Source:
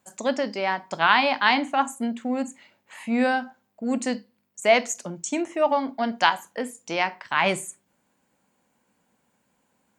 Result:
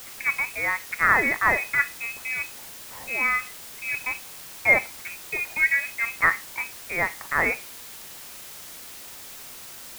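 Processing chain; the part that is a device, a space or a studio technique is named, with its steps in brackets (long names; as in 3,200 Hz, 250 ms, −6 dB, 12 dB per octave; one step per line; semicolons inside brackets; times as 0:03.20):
scrambled radio voice (band-pass filter 350–2,900 Hz; voice inversion scrambler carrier 2,800 Hz; white noise bed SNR 14 dB)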